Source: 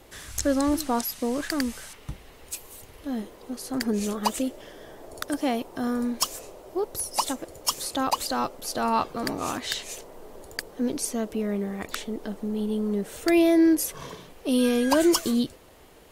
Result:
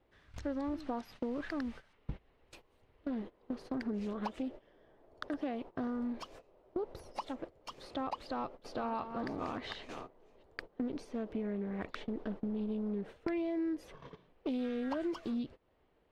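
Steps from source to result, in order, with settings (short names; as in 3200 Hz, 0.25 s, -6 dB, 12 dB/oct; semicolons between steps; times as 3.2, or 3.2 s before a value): 8.26–10.43 reverse delay 0.369 s, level -11 dB; gate -36 dBFS, range -20 dB; bell 8600 Hz +5.5 dB 0.34 oct; compressor 5:1, threshold -36 dBFS, peak gain reduction 17.5 dB; air absorption 310 m; Doppler distortion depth 0.34 ms; gain +1.5 dB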